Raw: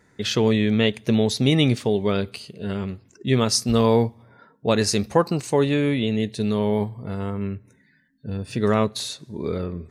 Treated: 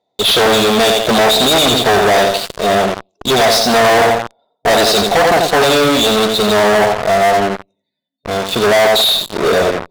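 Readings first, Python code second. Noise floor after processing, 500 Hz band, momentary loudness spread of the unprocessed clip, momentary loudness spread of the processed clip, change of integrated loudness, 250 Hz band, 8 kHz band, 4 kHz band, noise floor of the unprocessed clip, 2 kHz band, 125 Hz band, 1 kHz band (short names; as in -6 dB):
-73 dBFS, +11.5 dB, 12 LU, 9 LU, +11.0 dB, +3.0 dB, +11.5 dB, +16.0 dB, -60 dBFS, +17.0 dB, -1.5 dB, +17.5 dB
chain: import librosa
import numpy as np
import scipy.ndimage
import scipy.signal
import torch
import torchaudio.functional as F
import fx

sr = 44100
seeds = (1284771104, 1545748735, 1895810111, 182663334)

p1 = fx.double_bandpass(x, sr, hz=1600.0, octaves=2.4)
p2 = fx.high_shelf(p1, sr, hz=2300.0, db=-9.0)
p3 = p2 + fx.echo_feedback(p2, sr, ms=87, feedback_pct=32, wet_db=-9.0, dry=0)
p4 = fx.tube_stage(p3, sr, drive_db=49.0, bias=0.35)
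p5 = fx.fuzz(p4, sr, gain_db=59.0, gate_db=-56.0)
p6 = p4 + (p5 * librosa.db_to_amplitude(-6.0))
p7 = fx.dynamic_eq(p6, sr, hz=1300.0, q=0.93, threshold_db=-37.0, ratio=4.0, max_db=6)
y = p7 * librosa.db_to_amplitude(8.0)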